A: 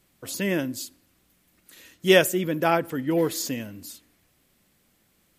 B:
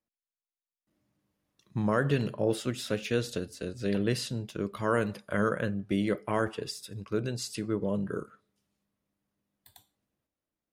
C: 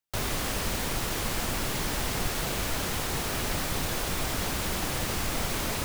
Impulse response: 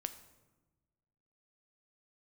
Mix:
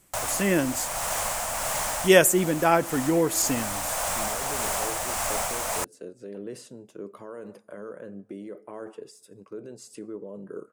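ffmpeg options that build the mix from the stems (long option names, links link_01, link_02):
-filter_complex "[0:a]volume=2.5dB,asplit=2[link_01][link_02];[1:a]alimiter=level_in=1dB:limit=-24dB:level=0:latency=1:release=40,volume=-1dB,highpass=160,equalizer=frequency=430:width=0.62:gain=13,adelay=2400,volume=-13dB,asplit=2[link_03][link_04];[link_04]volume=-14dB[link_05];[2:a]lowshelf=frequency=480:width_type=q:width=3:gain=-9,volume=1.5dB[link_06];[link_02]apad=whole_len=257668[link_07];[link_06][link_07]sidechaincompress=threshold=-28dB:ratio=5:attack=45:release=405[link_08];[3:a]atrim=start_sample=2205[link_09];[link_05][link_09]afir=irnorm=-1:irlink=0[link_10];[link_01][link_03][link_08][link_10]amix=inputs=4:normalize=0,tremolo=f=1.7:d=0.29,equalizer=frequency=1000:width_type=o:width=1:gain=3,equalizer=frequency=4000:width_type=o:width=1:gain=-6,equalizer=frequency=8000:width_type=o:width=1:gain=9"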